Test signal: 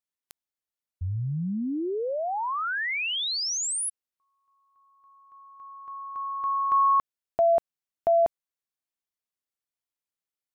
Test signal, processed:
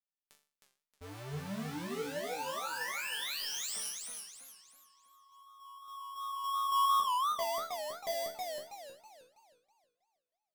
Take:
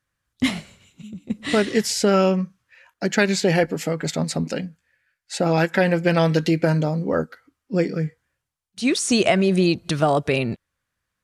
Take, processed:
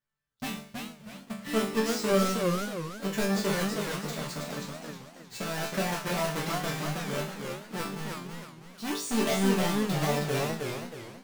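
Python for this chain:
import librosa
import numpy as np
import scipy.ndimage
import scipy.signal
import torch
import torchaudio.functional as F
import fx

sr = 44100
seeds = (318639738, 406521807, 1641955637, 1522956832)

y = fx.halfwave_hold(x, sr)
y = fx.resonator_bank(y, sr, root=50, chord='sus4', decay_s=0.39)
y = fx.echo_warbled(y, sr, ms=319, feedback_pct=38, rate_hz=2.8, cents=178, wet_db=-3.5)
y = y * 10.0 ** (1.5 / 20.0)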